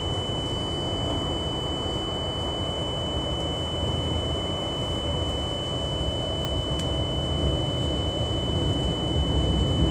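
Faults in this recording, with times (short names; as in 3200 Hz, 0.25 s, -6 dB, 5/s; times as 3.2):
tone 3000 Hz -31 dBFS
6.45 pop -13 dBFS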